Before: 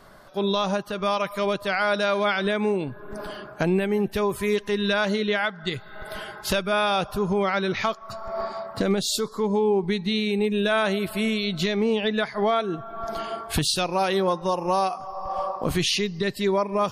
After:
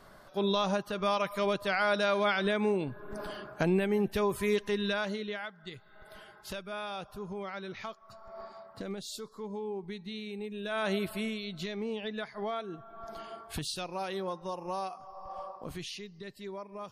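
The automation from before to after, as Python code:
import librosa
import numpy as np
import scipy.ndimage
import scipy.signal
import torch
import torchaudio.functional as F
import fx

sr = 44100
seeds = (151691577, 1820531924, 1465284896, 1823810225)

y = fx.gain(x, sr, db=fx.line((4.65, -5.0), (5.52, -16.0), (10.61, -16.0), (10.95, -5.0), (11.42, -13.0), (15.31, -13.0), (16.02, -19.0)))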